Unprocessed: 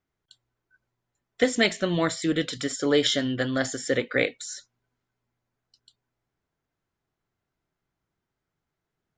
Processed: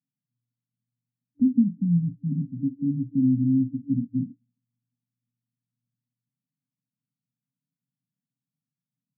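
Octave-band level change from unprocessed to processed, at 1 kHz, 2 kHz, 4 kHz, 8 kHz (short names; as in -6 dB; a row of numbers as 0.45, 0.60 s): under -40 dB, under -40 dB, under -40 dB, under -40 dB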